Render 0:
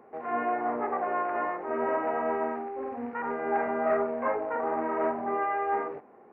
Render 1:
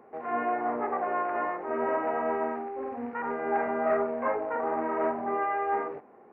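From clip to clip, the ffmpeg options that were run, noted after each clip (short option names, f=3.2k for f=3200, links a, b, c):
-af anull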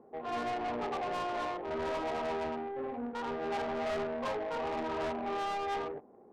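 -af "adynamicsmooth=sensitivity=2:basefreq=640,asoftclip=type=tanh:threshold=-31.5dB"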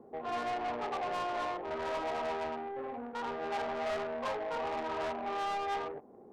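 -filter_complex "[0:a]lowshelf=f=490:g=5.5,acrossover=split=540[a][b];[a]acompressor=threshold=-45dB:ratio=6[c];[c][b]amix=inputs=2:normalize=0"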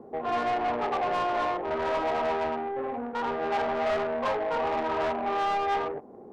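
-af "highshelf=f=5.1k:g=-10.5,volume=8dB"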